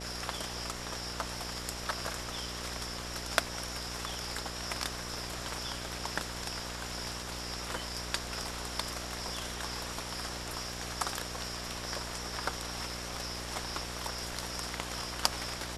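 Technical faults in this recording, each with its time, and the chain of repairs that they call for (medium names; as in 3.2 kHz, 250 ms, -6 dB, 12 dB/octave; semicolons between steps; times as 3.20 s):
buzz 60 Hz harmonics 12 -44 dBFS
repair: de-hum 60 Hz, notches 12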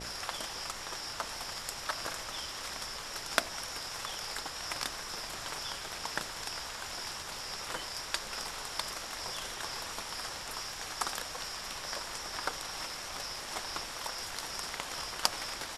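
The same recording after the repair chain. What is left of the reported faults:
nothing left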